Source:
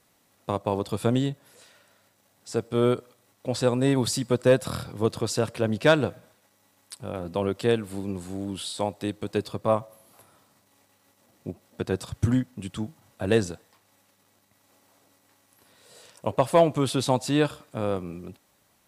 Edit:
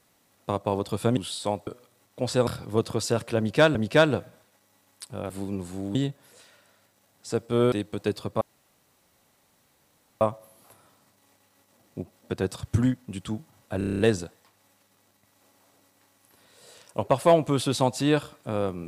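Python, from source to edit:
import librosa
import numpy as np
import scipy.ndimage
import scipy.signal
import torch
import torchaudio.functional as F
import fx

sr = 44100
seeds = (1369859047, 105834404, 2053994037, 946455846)

y = fx.edit(x, sr, fx.swap(start_s=1.17, length_s=1.77, other_s=8.51, other_length_s=0.5),
    fx.cut(start_s=3.74, length_s=1.0),
    fx.repeat(start_s=5.65, length_s=0.37, count=2),
    fx.cut(start_s=7.2, length_s=0.66),
    fx.insert_room_tone(at_s=9.7, length_s=1.8),
    fx.stutter(start_s=13.27, slice_s=0.03, count=8), tone=tone)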